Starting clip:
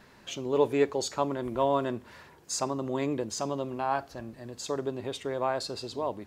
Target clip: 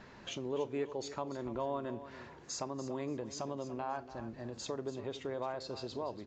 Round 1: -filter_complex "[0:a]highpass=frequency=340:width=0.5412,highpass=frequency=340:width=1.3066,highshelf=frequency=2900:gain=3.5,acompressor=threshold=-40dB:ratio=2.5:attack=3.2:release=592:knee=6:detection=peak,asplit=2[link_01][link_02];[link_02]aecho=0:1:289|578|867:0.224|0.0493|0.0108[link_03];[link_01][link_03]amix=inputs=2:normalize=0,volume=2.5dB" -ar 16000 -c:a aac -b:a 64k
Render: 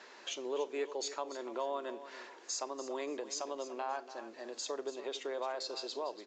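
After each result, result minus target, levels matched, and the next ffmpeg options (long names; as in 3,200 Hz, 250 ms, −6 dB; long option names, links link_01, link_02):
250 Hz band −6.0 dB; 8,000 Hz band +4.5 dB
-filter_complex "[0:a]highshelf=frequency=2900:gain=3.5,acompressor=threshold=-40dB:ratio=2.5:attack=3.2:release=592:knee=6:detection=peak,asplit=2[link_01][link_02];[link_02]aecho=0:1:289|578|867:0.224|0.0493|0.0108[link_03];[link_01][link_03]amix=inputs=2:normalize=0,volume=2.5dB" -ar 16000 -c:a aac -b:a 64k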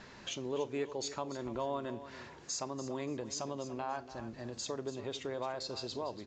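8,000 Hz band +4.0 dB
-filter_complex "[0:a]highshelf=frequency=2900:gain=-6,acompressor=threshold=-40dB:ratio=2.5:attack=3.2:release=592:knee=6:detection=peak,asplit=2[link_01][link_02];[link_02]aecho=0:1:289|578|867:0.224|0.0493|0.0108[link_03];[link_01][link_03]amix=inputs=2:normalize=0,volume=2.5dB" -ar 16000 -c:a aac -b:a 64k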